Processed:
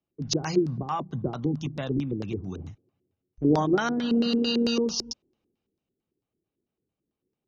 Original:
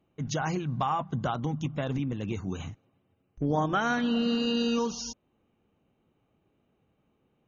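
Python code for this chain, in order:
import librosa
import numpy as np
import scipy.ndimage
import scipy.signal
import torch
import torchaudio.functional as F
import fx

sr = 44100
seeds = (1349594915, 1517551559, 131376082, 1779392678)

y = fx.filter_lfo_lowpass(x, sr, shape='square', hz=4.5, low_hz=370.0, high_hz=5100.0, q=4.0)
y = fx.band_widen(y, sr, depth_pct=40)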